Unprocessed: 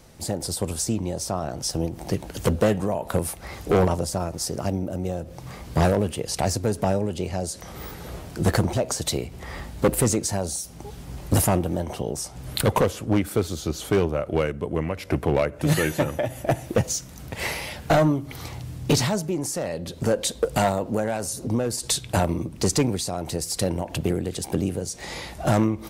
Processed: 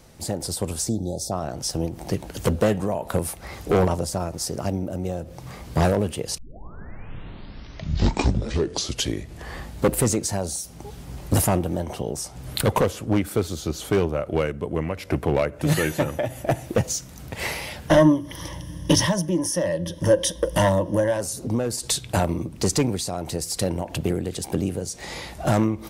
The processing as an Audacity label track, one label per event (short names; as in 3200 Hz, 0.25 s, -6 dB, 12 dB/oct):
0.890000	1.320000	spectral delete 870–3300 Hz
6.380000	6.380000	tape start 3.36 s
17.880000	21.210000	ripple EQ crests per octave 1.2, crest to trough 15 dB